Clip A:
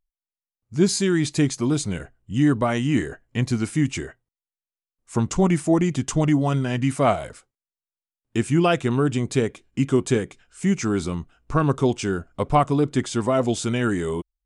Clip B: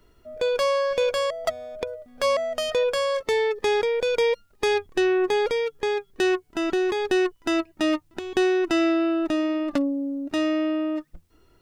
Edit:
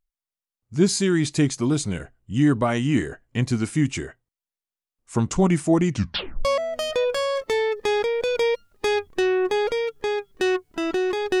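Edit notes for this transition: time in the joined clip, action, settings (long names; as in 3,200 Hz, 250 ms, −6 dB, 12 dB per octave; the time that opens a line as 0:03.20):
clip A
0:05.88: tape stop 0.57 s
0:06.45: continue with clip B from 0:02.24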